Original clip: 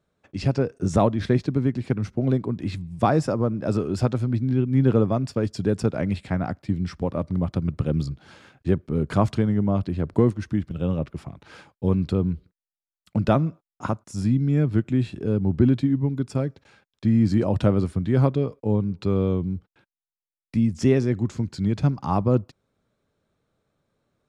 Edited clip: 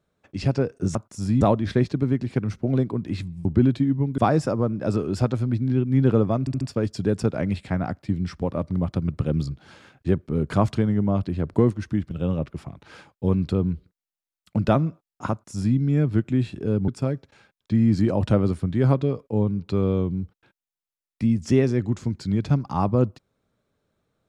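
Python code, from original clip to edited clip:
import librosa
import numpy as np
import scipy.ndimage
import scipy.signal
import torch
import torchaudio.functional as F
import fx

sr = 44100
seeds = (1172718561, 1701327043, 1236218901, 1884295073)

y = fx.edit(x, sr, fx.stutter(start_s=5.21, slice_s=0.07, count=4),
    fx.duplicate(start_s=13.91, length_s=0.46, to_s=0.95),
    fx.move(start_s=15.48, length_s=0.73, to_s=2.99), tone=tone)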